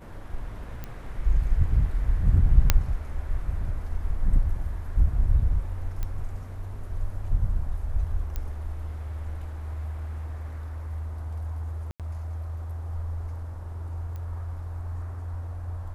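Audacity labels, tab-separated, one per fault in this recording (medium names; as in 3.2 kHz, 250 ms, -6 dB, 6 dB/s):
0.840000	0.840000	pop -21 dBFS
2.700000	2.700000	pop -2 dBFS
6.030000	6.030000	pop -18 dBFS
8.360000	8.360000	pop -18 dBFS
11.910000	12.000000	dropout 87 ms
14.160000	14.160000	pop -27 dBFS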